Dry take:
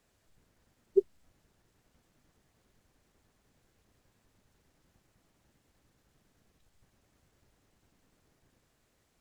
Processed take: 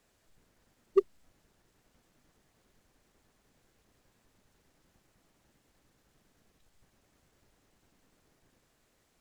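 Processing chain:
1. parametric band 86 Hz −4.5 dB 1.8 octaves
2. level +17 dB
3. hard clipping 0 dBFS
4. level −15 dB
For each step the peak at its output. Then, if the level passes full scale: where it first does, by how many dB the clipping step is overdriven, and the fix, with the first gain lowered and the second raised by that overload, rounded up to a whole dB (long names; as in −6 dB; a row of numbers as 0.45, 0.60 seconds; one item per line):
−13.0, +4.0, 0.0, −15.0 dBFS
step 2, 4.0 dB
step 2 +13 dB, step 4 −11 dB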